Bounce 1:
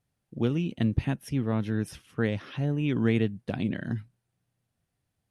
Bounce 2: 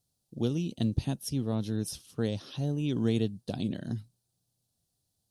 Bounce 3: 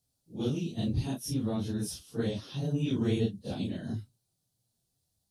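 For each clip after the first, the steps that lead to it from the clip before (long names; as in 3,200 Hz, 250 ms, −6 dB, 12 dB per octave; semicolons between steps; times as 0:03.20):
drawn EQ curve 730 Hz 0 dB, 2,100 Hz −12 dB, 4,100 Hz +11 dB; level −3 dB
random phases in long frames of 100 ms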